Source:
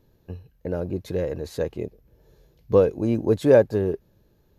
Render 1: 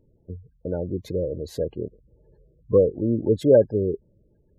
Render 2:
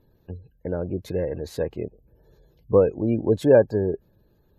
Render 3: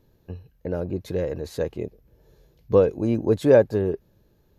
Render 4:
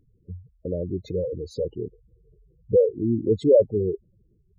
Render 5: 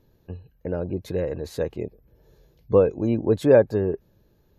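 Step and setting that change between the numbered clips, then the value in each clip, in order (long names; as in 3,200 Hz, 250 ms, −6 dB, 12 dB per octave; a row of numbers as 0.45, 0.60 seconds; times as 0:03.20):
gate on every frequency bin, under each frame's peak: −20, −35, −60, −10, −45 decibels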